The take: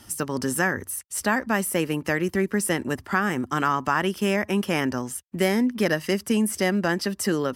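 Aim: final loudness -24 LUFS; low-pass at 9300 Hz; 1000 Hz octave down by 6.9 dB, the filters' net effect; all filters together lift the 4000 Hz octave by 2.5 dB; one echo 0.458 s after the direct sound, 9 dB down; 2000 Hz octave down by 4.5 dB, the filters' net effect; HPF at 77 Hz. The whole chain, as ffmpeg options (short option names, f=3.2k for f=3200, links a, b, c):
-af "highpass=77,lowpass=9.3k,equalizer=f=1k:t=o:g=-8.5,equalizer=f=2k:t=o:g=-4,equalizer=f=4k:t=o:g=6.5,aecho=1:1:458:0.355,volume=2dB"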